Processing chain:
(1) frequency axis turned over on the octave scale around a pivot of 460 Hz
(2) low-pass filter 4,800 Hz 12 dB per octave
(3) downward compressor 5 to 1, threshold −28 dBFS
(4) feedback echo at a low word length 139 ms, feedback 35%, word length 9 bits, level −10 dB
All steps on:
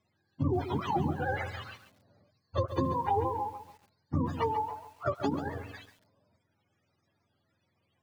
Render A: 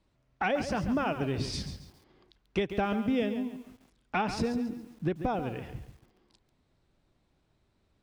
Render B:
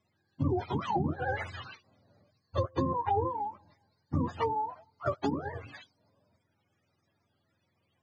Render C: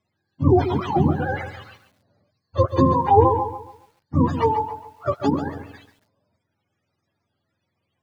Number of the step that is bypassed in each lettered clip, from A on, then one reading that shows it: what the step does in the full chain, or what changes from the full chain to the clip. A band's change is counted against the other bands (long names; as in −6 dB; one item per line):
1, 125 Hz band −7.0 dB
4, change in momentary loudness spread −2 LU
3, average gain reduction 8.0 dB